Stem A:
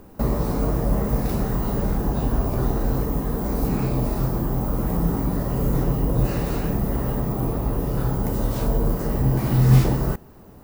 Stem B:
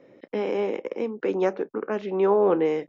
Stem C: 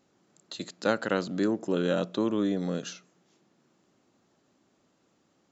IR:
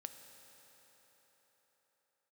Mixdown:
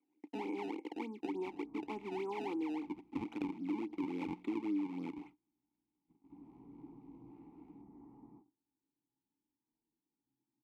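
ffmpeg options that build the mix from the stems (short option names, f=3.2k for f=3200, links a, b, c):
-filter_complex "[0:a]lowpass=1.5k,adelay=1050,volume=-9.5dB,afade=t=in:st=6.06:d=0.43:silence=0.251189,afade=t=out:st=8.33:d=0.2:silence=0.223872[a];[1:a]acompressor=threshold=-23dB:ratio=6,acrusher=samples=23:mix=1:aa=0.000001:lfo=1:lforange=36.8:lforate=3.4,volume=3dB,asplit=2[b][c];[2:a]aeval=exprs='val(0)+0.00158*(sin(2*PI*60*n/s)+sin(2*PI*2*60*n/s)/2+sin(2*PI*3*60*n/s)/3+sin(2*PI*4*60*n/s)/4+sin(2*PI*5*60*n/s)/5)':c=same,acrusher=samples=39:mix=1:aa=0.000001:lfo=1:lforange=62.4:lforate=3.6,adelay=2300,volume=3dB[d];[c]apad=whole_len=515198[e];[a][e]sidechaingate=range=-10dB:threshold=-49dB:ratio=16:detection=peak[f];[f][b][d]amix=inputs=3:normalize=0,agate=range=-22dB:threshold=-45dB:ratio=16:detection=peak,asplit=3[g][h][i];[g]bandpass=f=300:t=q:w=8,volume=0dB[j];[h]bandpass=f=870:t=q:w=8,volume=-6dB[k];[i]bandpass=f=2.24k:t=q:w=8,volume=-9dB[l];[j][k][l]amix=inputs=3:normalize=0,acompressor=threshold=-37dB:ratio=2.5"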